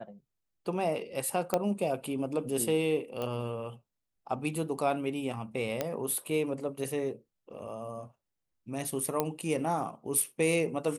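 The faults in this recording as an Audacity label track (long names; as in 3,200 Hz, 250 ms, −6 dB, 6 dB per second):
1.540000	1.540000	click −13 dBFS
3.220000	3.220000	click −22 dBFS
5.810000	5.810000	click −15 dBFS
9.200000	9.200000	click −13 dBFS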